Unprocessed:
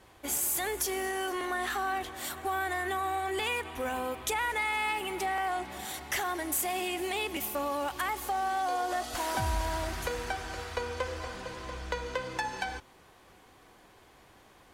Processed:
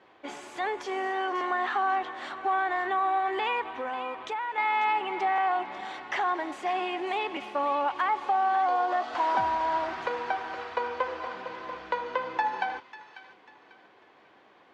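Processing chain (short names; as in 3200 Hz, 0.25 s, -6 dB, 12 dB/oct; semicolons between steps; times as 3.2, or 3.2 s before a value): dynamic EQ 950 Hz, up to +8 dB, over -48 dBFS, Q 1.8; 3.73–4.58 compressor 6:1, threshold -31 dBFS, peak gain reduction 8.5 dB; BPF 260–3400 Hz; air absorption 74 m; thin delay 0.544 s, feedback 33%, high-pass 1700 Hz, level -10.5 dB; gain +1.5 dB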